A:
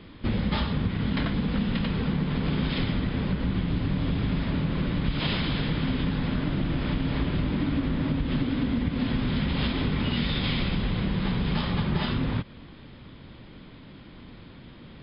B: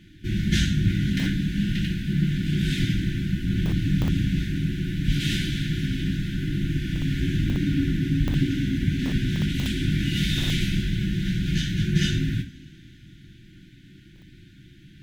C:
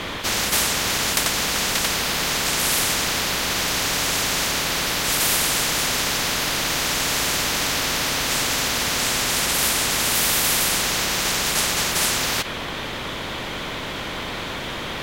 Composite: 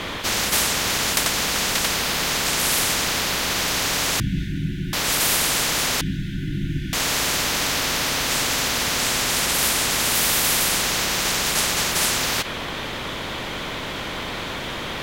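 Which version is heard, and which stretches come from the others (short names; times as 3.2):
C
4.2–4.93 from B
6.01–6.93 from B
not used: A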